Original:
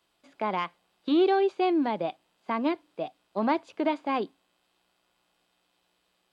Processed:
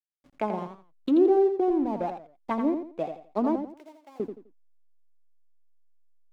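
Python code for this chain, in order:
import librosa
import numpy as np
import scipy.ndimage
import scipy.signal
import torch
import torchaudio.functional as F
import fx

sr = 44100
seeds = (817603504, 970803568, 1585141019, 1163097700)

y = fx.tube_stage(x, sr, drive_db=23.0, bias=0.25, at=(1.7, 2.51))
y = fx.env_lowpass_down(y, sr, base_hz=550.0, full_db=-24.5)
y = fx.backlash(y, sr, play_db=-45.5)
y = fx.differentiator(y, sr, at=(3.67, 4.2))
y = fx.echo_feedback(y, sr, ms=85, feedback_pct=28, wet_db=-7.5)
y = fx.record_warp(y, sr, rpm=45.0, depth_cents=160.0)
y = y * librosa.db_to_amplitude(2.5)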